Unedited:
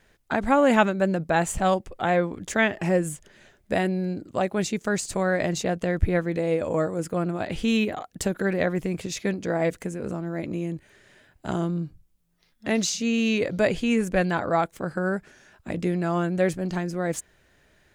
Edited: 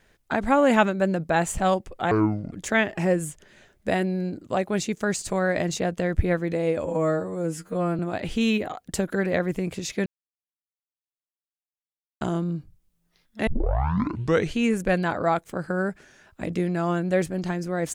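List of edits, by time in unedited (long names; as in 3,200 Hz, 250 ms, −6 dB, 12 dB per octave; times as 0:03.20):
0:02.11–0:02.36: play speed 61%
0:06.69–0:07.26: time-stretch 2×
0:09.33–0:11.48: silence
0:12.74: tape start 1.11 s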